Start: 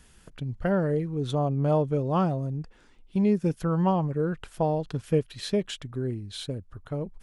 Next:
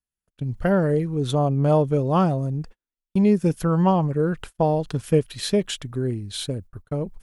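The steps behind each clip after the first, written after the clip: gate -42 dBFS, range -44 dB; treble shelf 9.6 kHz +12 dB; trim +5 dB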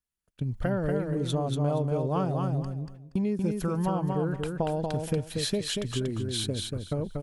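compression 4:1, threshold -27 dBFS, peak gain reduction 12 dB; feedback delay 236 ms, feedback 22%, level -4 dB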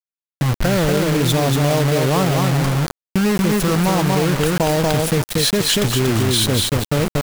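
in parallel at -2 dB: compressor with a negative ratio -31 dBFS, ratio -0.5; on the sum: bit crusher 5-bit; trim +8 dB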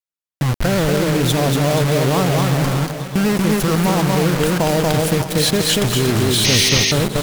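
backward echo that repeats 308 ms, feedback 73%, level -12 dB; vibrato 12 Hz 37 cents; painted sound noise, 6.44–6.92 s, 1.8–6.6 kHz -17 dBFS

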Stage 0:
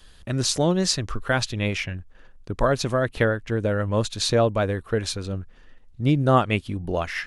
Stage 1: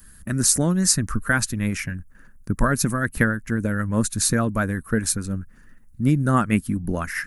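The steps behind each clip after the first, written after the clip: harmonic-percussive split harmonic -7 dB; FFT filter 120 Hz 0 dB, 220 Hz +5 dB, 400 Hz -9 dB, 760 Hz -12 dB, 1.6 kHz +1 dB, 3.3 kHz -17 dB, 11 kHz +13 dB; trim +6.5 dB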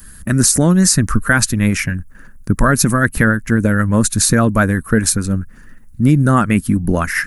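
loudness maximiser +10.5 dB; trim -1 dB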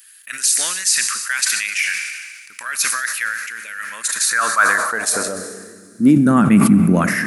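Schroeder reverb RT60 2.9 s, combs from 28 ms, DRR 12 dB; high-pass sweep 2.5 kHz -> 190 Hz, 3.89–6.40 s; decay stretcher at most 37 dB/s; trim -4 dB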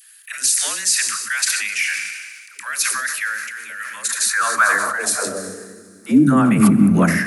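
phase dispersion lows, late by 127 ms, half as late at 430 Hz; trim -1 dB

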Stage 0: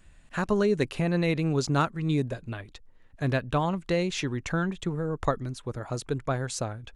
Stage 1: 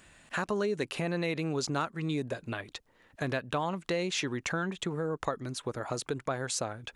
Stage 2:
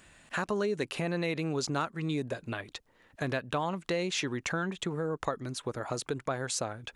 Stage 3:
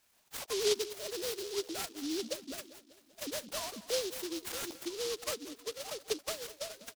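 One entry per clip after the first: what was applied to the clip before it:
in parallel at +2 dB: peak limiter -21.5 dBFS, peak gain reduction 10.5 dB; on the sum: high-pass 330 Hz 6 dB/octave; compression 2:1, threshold -34 dBFS, peak gain reduction 9.5 dB
no audible change
formants replaced by sine waves; feedback delay 196 ms, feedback 56%, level -16.5 dB; delay time shaken by noise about 4.3 kHz, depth 0.19 ms; trim -5 dB

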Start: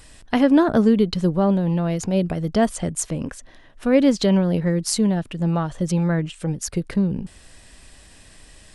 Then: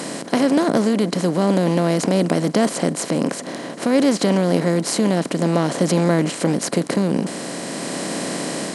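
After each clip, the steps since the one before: spectral levelling over time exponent 0.4; level rider gain up to 3 dB; high-pass 130 Hz 24 dB/octave; trim -3 dB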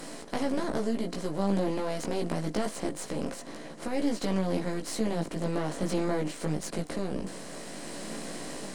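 partial rectifier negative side -7 dB; reverse; upward compressor, threshold -26 dBFS; reverse; chorus voices 4, 0.23 Hz, delay 17 ms, depth 3.8 ms; trim -8 dB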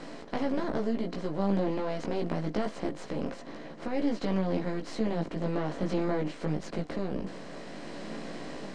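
distance through air 150 m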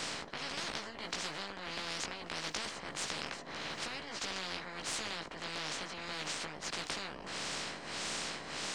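tremolo 1.6 Hz, depth 89%; spectrum-flattening compressor 10:1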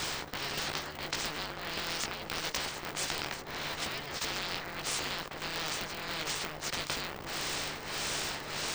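polarity switched at an audio rate 150 Hz; trim +4 dB

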